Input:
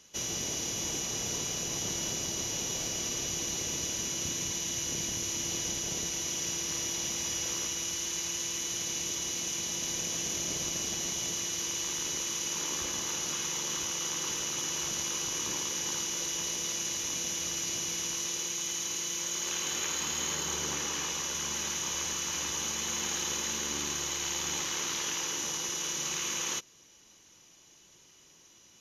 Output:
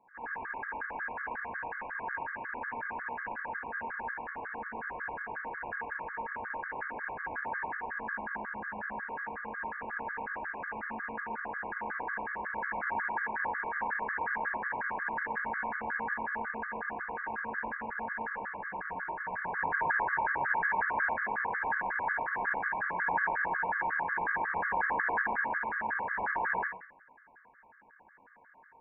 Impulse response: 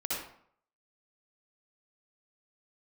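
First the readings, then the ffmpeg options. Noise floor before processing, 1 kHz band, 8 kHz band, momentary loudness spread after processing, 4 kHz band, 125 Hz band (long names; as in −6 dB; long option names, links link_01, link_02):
−59 dBFS, +11.5 dB, below −40 dB, 8 LU, below −40 dB, −10.0 dB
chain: -filter_complex "[0:a]highpass=frequency=1500:width_type=q:width=16,aeval=exprs='val(0)*sin(2*PI*370*n/s)':channel_layout=same[link_01];[1:a]atrim=start_sample=2205,asetrate=41895,aresample=44100[link_02];[link_01][link_02]afir=irnorm=-1:irlink=0,lowpass=frequency=2400:width_type=q:width=0.5098,lowpass=frequency=2400:width_type=q:width=0.6013,lowpass=frequency=2400:width_type=q:width=0.9,lowpass=frequency=2400:width_type=q:width=2.563,afreqshift=-2800,afftfilt=real='re*gt(sin(2*PI*5.5*pts/sr)*(1-2*mod(floor(b*sr/1024/1100),2)),0)':imag='im*gt(sin(2*PI*5.5*pts/sr)*(1-2*mod(floor(b*sr/1024/1100),2)),0)':win_size=1024:overlap=0.75"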